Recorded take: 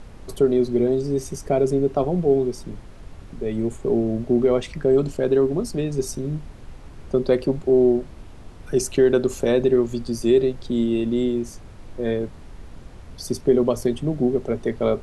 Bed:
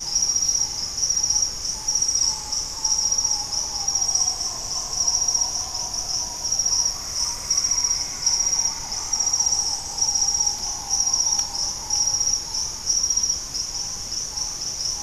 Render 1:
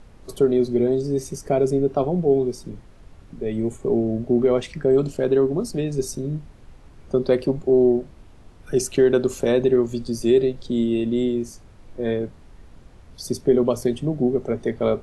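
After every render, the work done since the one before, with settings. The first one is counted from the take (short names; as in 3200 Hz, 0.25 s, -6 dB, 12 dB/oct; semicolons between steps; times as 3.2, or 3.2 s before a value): noise print and reduce 6 dB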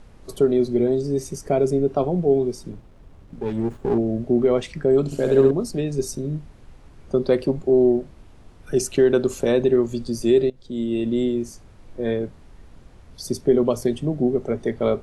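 2.72–3.98 running maximum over 17 samples; 5.05–5.51 flutter echo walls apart 11.5 m, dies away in 1.1 s; 10.5–11.06 fade in, from -18.5 dB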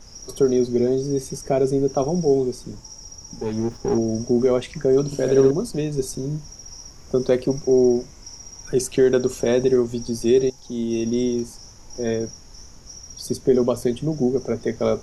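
add bed -20 dB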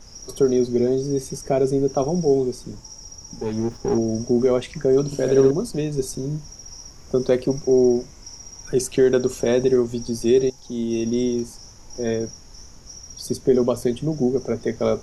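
nothing audible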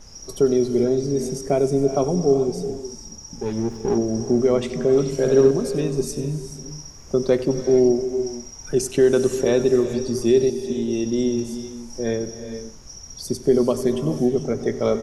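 echo 94 ms -16.5 dB; non-linear reverb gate 0.47 s rising, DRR 9.5 dB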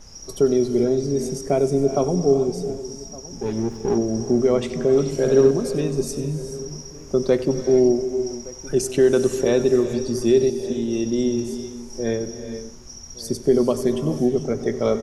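outdoor echo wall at 200 m, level -19 dB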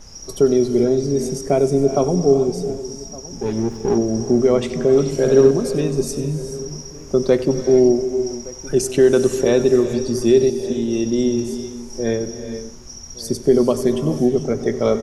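gain +3 dB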